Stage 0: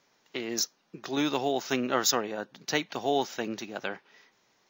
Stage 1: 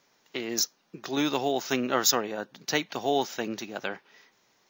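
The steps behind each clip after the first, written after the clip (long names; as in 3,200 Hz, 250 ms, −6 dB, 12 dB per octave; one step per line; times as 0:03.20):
high-shelf EQ 9,000 Hz +5.5 dB
level +1 dB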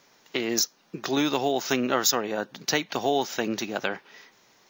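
downward compressor 2 to 1, threshold −31 dBFS, peak gain reduction 8 dB
level +7 dB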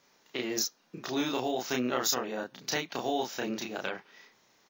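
double-tracking delay 32 ms −2 dB
level −8 dB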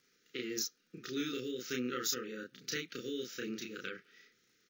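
linear-phase brick-wall band-stop 530–1,200 Hz
surface crackle 59 per second −56 dBFS
level −6 dB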